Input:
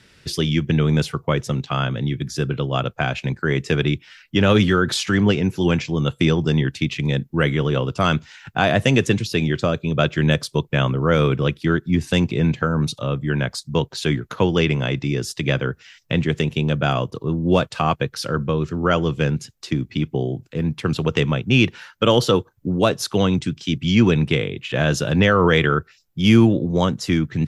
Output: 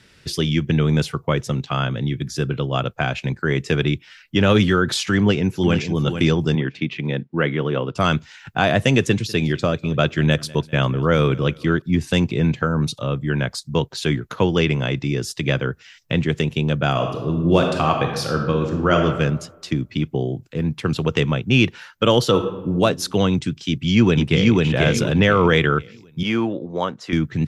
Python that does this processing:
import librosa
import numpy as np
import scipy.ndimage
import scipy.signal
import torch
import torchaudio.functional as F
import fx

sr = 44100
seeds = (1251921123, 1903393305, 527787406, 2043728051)

y = fx.echo_throw(x, sr, start_s=5.18, length_s=0.71, ms=450, feedback_pct=20, wet_db=-9.0)
y = fx.bandpass_edges(y, sr, low_hz=160.0, high_hz=2900.0, at=(6.55, 7.95))
y = fx.echo_feedback(y, sr, ms=198, feedback_pct=46, wet_db=-22, at=(9.03, 11.82))
y = fx.reverb_throw(y, sr, start_s=16.91, length_s=2.13, rt60_s=1.1, drr_db=2.5)
y = fx.reverb_throw(y, sr, start_s=22.3, length_s=0.49, rt60_s=0.98, drr_db=4.5)
y = fx.echo_throw(y, sr, start_s=23.68, length_s=0.89, ms=490, feedback_pct=30, wet_db=-1.0)
y = fx.bandpass_q(y, sr, hz=1100.0, q=0.58, at=(26.23, 27.13))